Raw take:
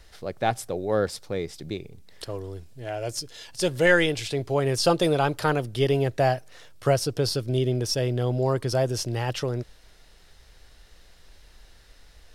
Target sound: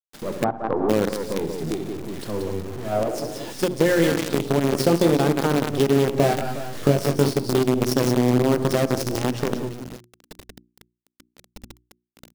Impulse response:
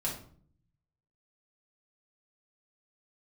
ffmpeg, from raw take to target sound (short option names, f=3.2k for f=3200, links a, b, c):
-filter_complex "[0:a]aecho=1:1:65|111|178|364:0.299|0.133|0.447|0.15,asplit=2[a][b];[1:a]atrim=start_sample=2205,lowshelf=f=96:g=-4[c];[b][c]afir=irnorm=-1:irlink=0,volume=-26dB[d];[a][d]amix=inputs=2:normalize=0,acrusher=bits=4:dc=4:mix=0:aa=0.000001,asettb=1/sr,asplit=3[e][f][g];[e]atrim=end=0.444[h];[f]atrim=start=0.44:end=0.89,asetpts=PTS-STARTPTS,afade=t=in:d=0.004:c=qsin,afade=t=out:st=0.446:d=0.004:c=qsin,lowpass=f=1.1k:t=q:w=2.3[i];[g]atrim=start=0.886[j];[h][i]acrossfade=d=0.004:c1=hsin:c2=qsin[k];[k][j]acrossfade=d=0.004:c1=qsin:c2=hsin,acompressor=threshold=-23dB:ratio=6,asettb=1/sr,asplit=3[l][m][n];[l]atrim=end=2.924[o];[m]atrim=start=2.92:end=3.53,asetpts=PTS-STARTPTS,afade=t=in:d=0.004:c=qsin,afade=t=out:st=0.606:d=0.004:c=qsin,equalizer=f=590:t=o:w=2.1:g=8[p];[n]atrim=start=3.526[q];[o][p]acrossfade=d=0.004:c1=hsin:c2=qsin[r];[r][q]acrossfade=d=0.004:c1=qsin:c2=hsin,asettb=1/sr,asplit=3[s][t][u];[s]atrim=end=6.204[v];[t]atrim=start=6.2:end=7.34,asetpts=PTS-STARTPTS,afade=t=in:d=0.004:c=qsin,afade=t=out:st=1.136:d=0.004:c=qsin,asplit=2[w][x];[x]adelay=21,volume=-3dB[y];[w][y]amix=inputs=2:normalize=0,atrim=end_sample=50274[z];[u]atrim=start=7.336[aa];[v][z]acrossfade=d=0.004:c1=hsin:c2=qsin[ab];[ab][aa]acrossfade=d=0.004:c1=qsin:c2=hsin,alimiter=limit=-14.5dB:level=0:latency=1:release=336,equalizer=f=250:t=o:w=1.9:g=15,bandreject=f=60:t=h:w=6,bandreject=f=120:t=h:w=6,bandreject=f=180:t=h:w=6,bandreject=f=240:t=h:w=6,bandreject=f=300:t=h:w=6,bandreject=f=360:t=h:w=6,volume=1.5dB"